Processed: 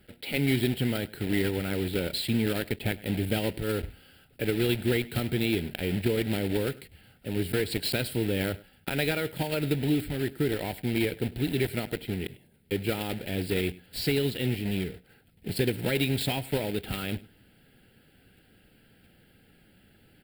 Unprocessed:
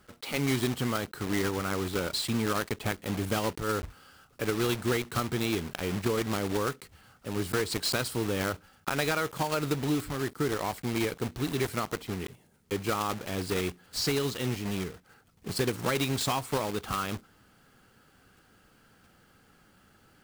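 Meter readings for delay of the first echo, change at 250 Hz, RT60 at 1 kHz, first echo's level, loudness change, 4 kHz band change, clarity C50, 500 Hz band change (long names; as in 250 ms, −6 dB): 100 ms, +3.0 dB, no reverb audible, −21.0 dB, +1.5 dB, +1.0 dB, no reverb audible, +1.5 dB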